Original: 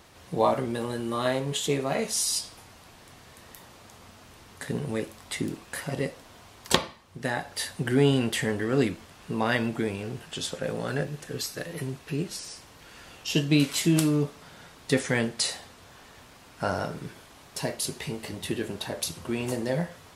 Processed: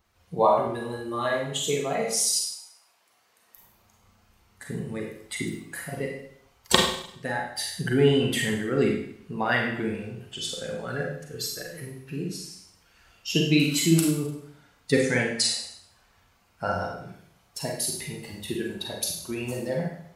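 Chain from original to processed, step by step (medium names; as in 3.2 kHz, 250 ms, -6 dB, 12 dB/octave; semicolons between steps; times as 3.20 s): expander on every frequency bin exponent 1.5; 2.36–3.56 s: high-pass 820 Hz -> 270 Hz 12 dB/octave; harmonic-percussive split percussive +4 dB; Schroeder reverb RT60 0.67 s, combs from 33 ms, DRR 0 dB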